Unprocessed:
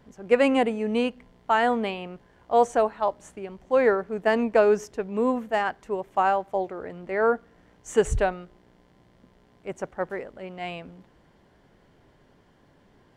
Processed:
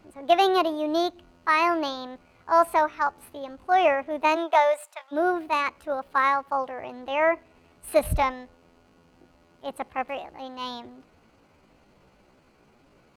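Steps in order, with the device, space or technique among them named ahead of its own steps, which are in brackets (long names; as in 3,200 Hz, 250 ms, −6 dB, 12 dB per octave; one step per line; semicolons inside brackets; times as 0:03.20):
chipmunk voice (pitch shifter +6 semitones)
0:04.35–0:05.11: high-pass filter 340 Hz → 1,100 Hz 24 dB per octave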